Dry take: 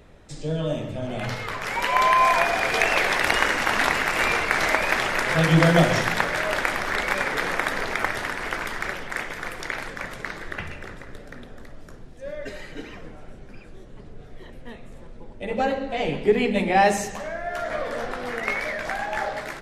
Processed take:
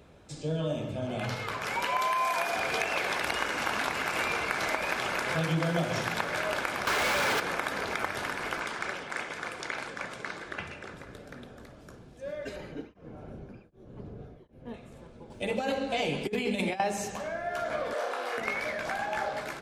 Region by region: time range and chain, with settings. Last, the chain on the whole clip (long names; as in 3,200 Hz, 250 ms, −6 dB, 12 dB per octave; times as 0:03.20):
0:01.99–0:02.56: high-pass filter 180 Hz 6 dB per octave + high-shelf EQ 7,600 Hz +9 dB
0:06.87–0:07.40: sign of each sample alone + mid-hump overdrive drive 22 dB, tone 3,400 Hz, clips at −12 dBFS
0:08.60–0:10.94: low-pass filter 10,000 Hz 24 dB per octave + low-shelf EQ 130 Hz −9 dB
0:12.56–0:14.74: tilt shelving filter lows +6.5 dB, about 1,300 Hz + notch filter 7,900 Hz, Q 6.6 + tremolo along a rectified sine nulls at 1.3 Hz
0:15.30–0:16.80: high-shelf EQ 3,300 Hz +11.5 dB + compressor whose output falls as the input rises −23 dBFS, ratio −0.5
0:17.93–0:18.38: high-pass filter 390 Hz 24 dB per octave + flutter between parallel walls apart 5.4 metres, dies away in 0.44 s
whole clip: downward compressor 4 to 1, threshold −23 dBFS; high-pass filter 63 Hz; notch filter 1,900 Hz, Q 8; level −3 dB